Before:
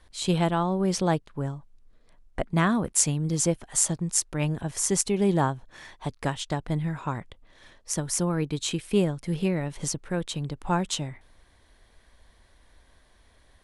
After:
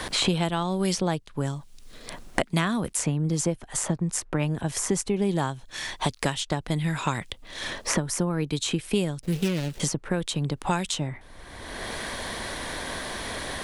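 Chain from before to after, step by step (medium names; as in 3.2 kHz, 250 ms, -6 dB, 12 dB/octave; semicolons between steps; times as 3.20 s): 9.21–9.80 s: median filter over 41 samples; three bands compressed up and down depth 100%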